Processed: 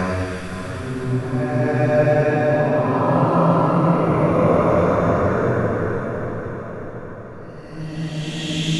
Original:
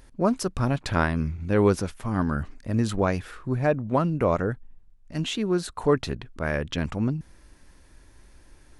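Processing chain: spectral trails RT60 0.33 s; Paulstretch 4.2×, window 0.50 s, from 3.18; diffused feedback echo 0.585 s, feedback 55%, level -7.5 dB; gain +5 dB

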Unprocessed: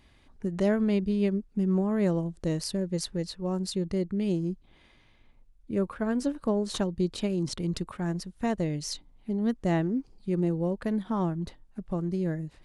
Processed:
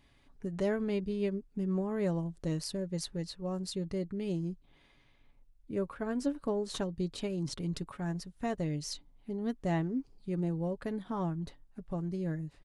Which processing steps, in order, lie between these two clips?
comb 7.1 ms, depth 36%; gain -5.5 dB

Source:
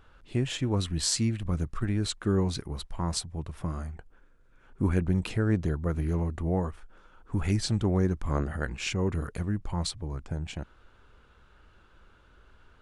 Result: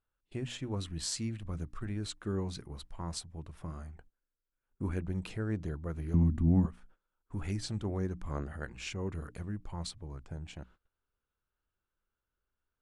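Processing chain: notches 60/120/180/240/300 Hz; gate -48 dBFS, range -22 dB; 6.14–6.66 resonant low shelf 340 Hz +10.5 dB, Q 3; gain -8.5 dB

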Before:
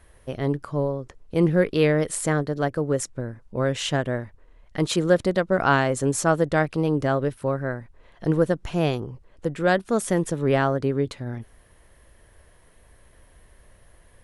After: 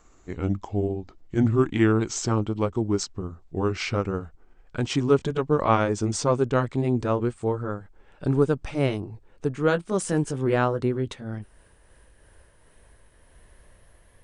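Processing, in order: gliding pitch shift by -6.5 st ending unshifted

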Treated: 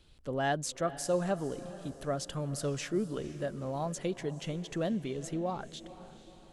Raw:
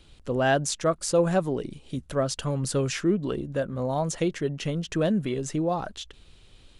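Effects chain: speed mistake 24 fps film run at 25 fps; diffused feedback echo 0.476 s, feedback 47%, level -15.5 dB; gain -8 dB

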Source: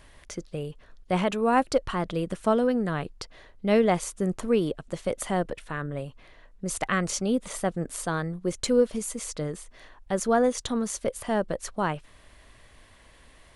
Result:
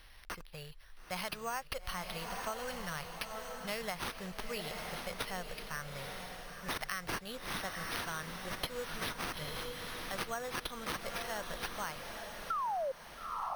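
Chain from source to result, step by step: passive tone stack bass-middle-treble 10-0-10; careless resampling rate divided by 6×, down none, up hold; painted sound fall, 12.5–12.92, 510–1400 Hz -28 dBFS; diffused feedback echo 0.912 s, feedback 42%, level -7 dB; compressor 5:1, threshold -36 dBFS, peak gain reduction 9.5 dB; gain +1.5 dB

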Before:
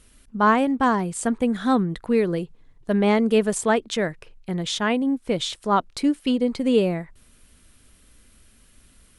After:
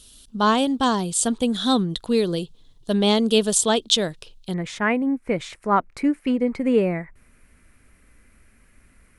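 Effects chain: resonant high shelf 2700 Hz +8.5 dB, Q 3, from 4.54 s -6.5 dB

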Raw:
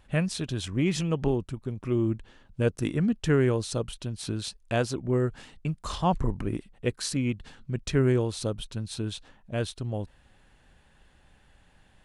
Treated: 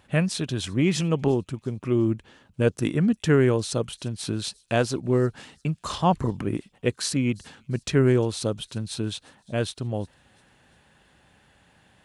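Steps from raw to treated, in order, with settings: HPF 98 Hz 12 dB/oct; thin delay 0.351 s, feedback 49%, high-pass 4600 Hz, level -22 dB; gain +4 dB

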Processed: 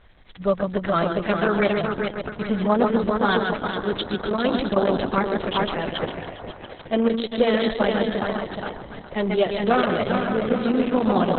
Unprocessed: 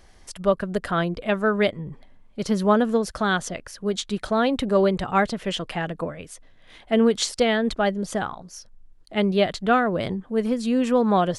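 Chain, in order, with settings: multi-head echo 0.137 s, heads first and third, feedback 59%, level -6 dB; Opus 6 kbps 48000 Hz

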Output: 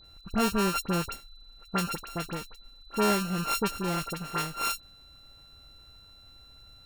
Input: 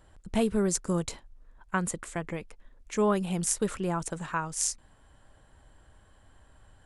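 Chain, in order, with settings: sample sorter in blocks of 32 samples; dispersion highs, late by 46 ms, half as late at 2200 Hz; whine 4000 Hz -53 dBFS

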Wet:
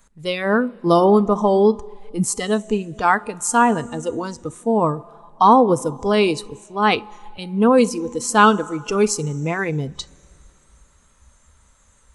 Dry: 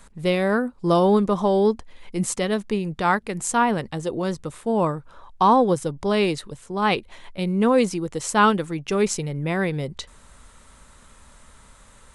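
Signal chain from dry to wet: Schroeder reverb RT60 2.9 s, combs from 26 ms, DRR 16.5 dB; spectral noise reduction 13 dB; gain +4.5 dB

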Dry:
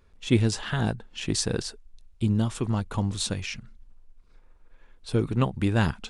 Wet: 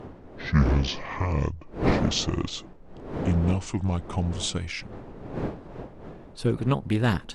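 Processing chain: speed glide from 56% -> 110%; wind noise 430 Hz -34 dBFS; Doppler distortion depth 0.25 ms

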